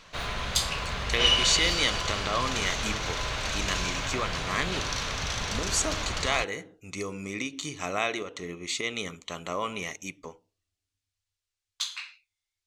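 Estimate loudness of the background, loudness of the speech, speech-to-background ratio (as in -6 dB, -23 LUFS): -29.0 LUFS, -31.0 LUFS, -2.0 dB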